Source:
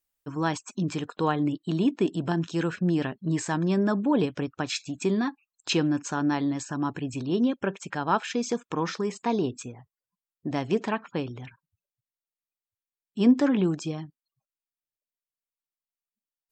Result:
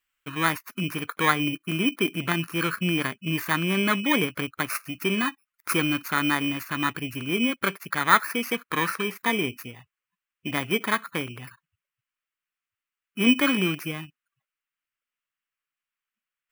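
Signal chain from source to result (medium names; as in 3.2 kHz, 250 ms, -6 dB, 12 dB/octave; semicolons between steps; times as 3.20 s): bit-reversed sample order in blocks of 16 samples; high-order bell 1.8 kHz +14 dB; trim -1.5 dB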